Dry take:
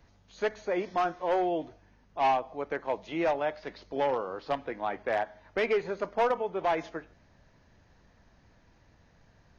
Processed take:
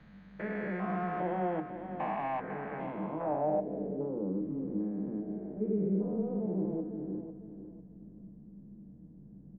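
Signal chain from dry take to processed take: spectrogram pixelated in time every 400 ms; 4.29–5.21 s: peaking EQ 680 Hz -14 dB 0.6 oct; in parallel at +1 dB: compression, threshold -45 dBFS, peak gain reduction 16.5 dB; on the sum: feedback delay 499 ms, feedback 29%, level -10 dB; on a send at -8 dB: reverberation, pre-delay 3 ms; on the sum: low-pass sweep 1.8 kHz -> 350 Hz, 2.77–4.15 s; trim -6.5 dB

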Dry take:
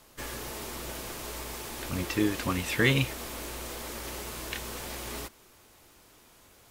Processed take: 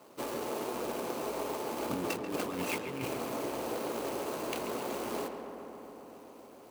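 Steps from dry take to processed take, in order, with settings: median filter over 25 samples; high-pass 270 Hz 12 dB/octave; treble shelf 6.6 kHz +10 dB; compressor with a negative ratio -40 dBFS, ratio -1; filtered feedback delay 138 ms, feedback 84%, low-pass 2.8 kHz, level -8 dB; trim +4.5 dB

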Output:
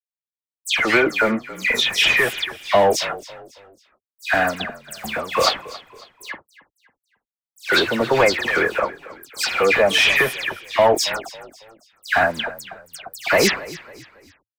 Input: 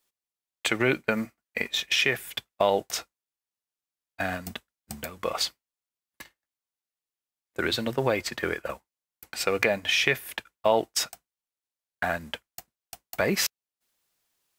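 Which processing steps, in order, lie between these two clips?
overdrive pedal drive 24 dB, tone 2.6 kHz, clips at -4.5 dBFS; small samples zeroed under -41.5 dBFS; phase dispersion lows, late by 139 ms, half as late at 2.8 kHz; on a send: frequency-shifting echo 275 ms, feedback 39%, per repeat -36 Hz, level -18 dB

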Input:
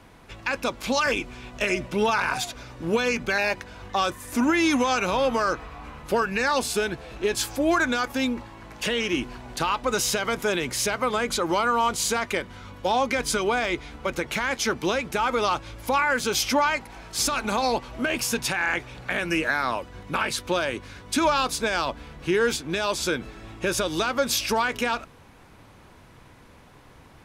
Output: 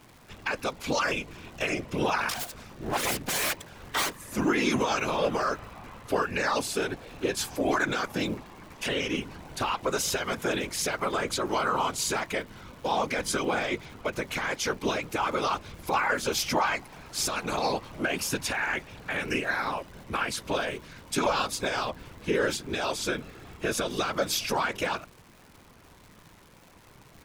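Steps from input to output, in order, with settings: 2.29–4.17 s: self-modulated delay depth 0.97 ms; whisper effect; crackle 270 per s -39 dBFS; trim -4 dB

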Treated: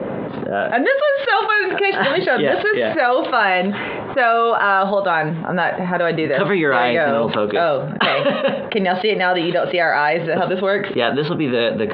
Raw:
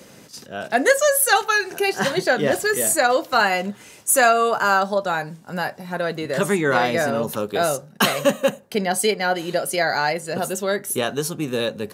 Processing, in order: steep low-pass 3.8 kHz 72 dB/octave; level-controlled noise filter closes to 830 Hz, open at -16 dBFS; bass shelf 190 Hz -10.5 dB; level flattener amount 70%; trim -1 dB

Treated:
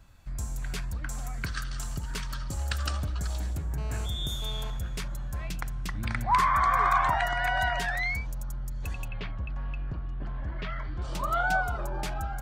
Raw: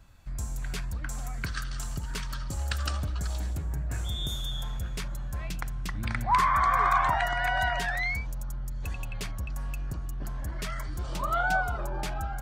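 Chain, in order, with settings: 3.78–4.70 s: mobile phone buzz -44 dBFS; 9.08–11.02 s: low-pass 3.5 kHz 24 dB/octave

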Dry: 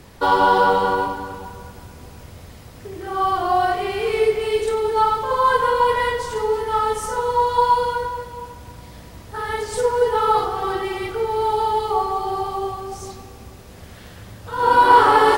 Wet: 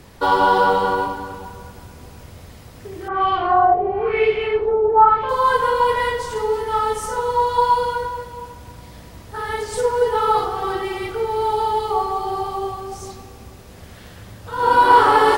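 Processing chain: 3.08–5.29 s: LFO low-pass sine 1 Hz 620–2900 Hz

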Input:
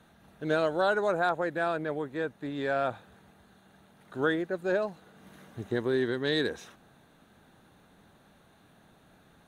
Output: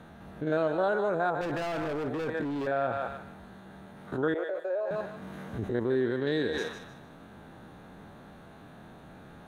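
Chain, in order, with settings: spectrogram pixelated in time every 50 ms; treble shelf 2.6 kHz -12 dB; on a send: thinning echo 152 ms, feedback 31%, high-pass 860 Hz, level -7 dB; 1.41–2.67 s: on the sum: overload inside the chain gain 36 dB; 4.34–4.91 s: ladder high-pass 470 Hz, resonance 55%; in parallel at +1.5 dB: compressor with a negative ratio -43 dBFS, ratio -1

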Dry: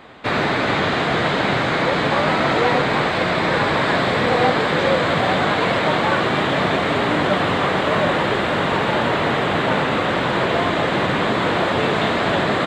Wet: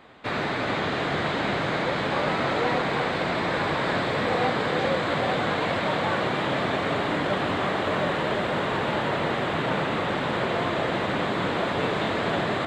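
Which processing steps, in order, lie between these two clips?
echo whose repeats swap between lows and highs 350 ms, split 910 Hz, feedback 62%, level -5 dB; trim -8 dB

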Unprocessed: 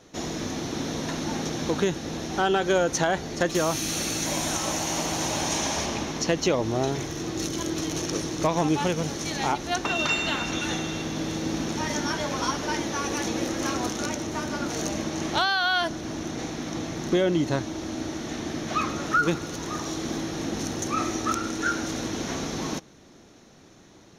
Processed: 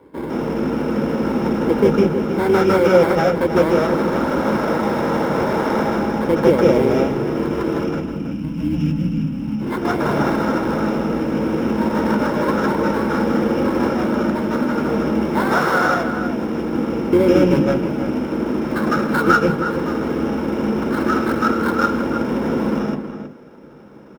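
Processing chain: octave divider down 2 oct, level -1 dB; time-frequency box 7.84–9.61 s, 310–10000 Hz -26 dB; sample-rate reducer 2.8 kHz, jitter 20%; echo from a far wall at 55 m, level -9 dB; reverberation RT60 0.15 s, pre-delay 152 ms, DRR -3 dB; trim -9.5 dB

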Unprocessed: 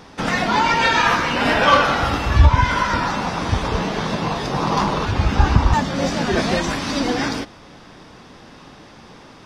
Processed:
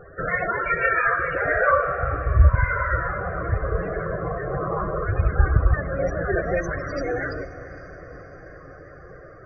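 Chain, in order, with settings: rattle on loud lows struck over -22 dBFS, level -20 dBFS; in parallel at +1.5 dB: compression, threshold -28 dBFS, peak gain reduction 20 dB; on the sum: static phaser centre 900 Hz, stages 6; feedback comb 270 Hz, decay 0.2 s, harmonics all, mix 30%; loudest bins only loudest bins 32; 1.71–2.55 s: Chebyshev low-pass 1.2 kHz, order 3; on a send: echo that smears into a reverb 465 ms, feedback 64%, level -15.5 dB

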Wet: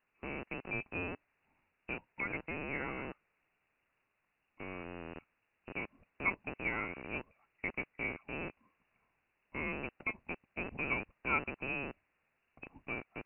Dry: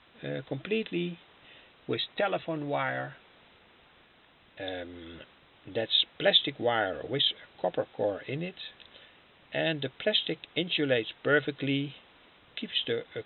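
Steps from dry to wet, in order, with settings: rattle on loud lows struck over -48 dBFS, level -16 dBFS; frequency inversion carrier 2.8 kHz; upward expansion 1.5:1, over -45 dBFS; trim -8 dB

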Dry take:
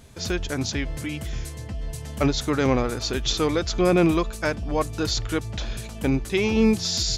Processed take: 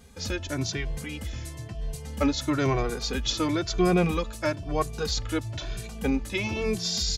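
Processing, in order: endless flanger 2.1 ms +1 Hz

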